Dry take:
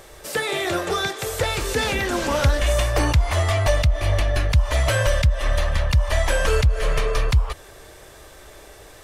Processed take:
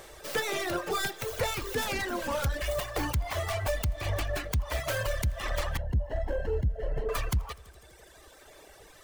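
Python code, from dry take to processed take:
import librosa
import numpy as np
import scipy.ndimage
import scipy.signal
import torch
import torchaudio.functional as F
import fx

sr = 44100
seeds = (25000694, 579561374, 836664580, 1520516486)

y = fx.tracing_dist(x, sr, depth_ms=0.31)
y = fx.low_shelf(y, sr, hz=190.0, db=-4.0)
y = fx.echo_heads(y, sr, ms=83, heads='first and second', feedback_pct=65, wet_db=-16.5)
y = fx.dereverb_blind(y, sr, rt60_s=1.5)
y = fx.moving_average(y, sr, points=37, at=(5.77, 7.09))
y = fx.rider(y, sr, range_db=10, speed_s=0.5)
y = 10.0 ** (-14.5 / 20.0) * np.tanh(y / 10.0 ** (-14.5 / 20.0))
y = fx.dmg_crackle(y, sr, seeds[0], per_s=230.0, level_db=-56.0)
y = y * librosa.db_to_amplitude(-5.0)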